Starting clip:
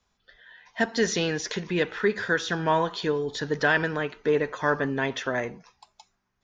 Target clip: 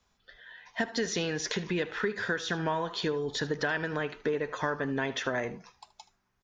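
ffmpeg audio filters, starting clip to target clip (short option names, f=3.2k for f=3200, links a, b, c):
-filter_complex "[0:a]acompressor=threshold=-28dB:ratio=6,asplit=2[a][b];[b]aecho=0:1:77:0.126[c];[a][c]amix=inputs=2:normalize=0,volume=1dB"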